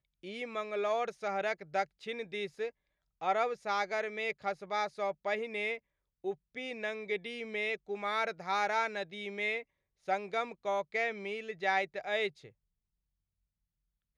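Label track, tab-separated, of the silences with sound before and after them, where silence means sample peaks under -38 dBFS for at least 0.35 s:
2.690000	3.220000	silence
5.770000	6.250000	silence
9.610000	10.080000	silence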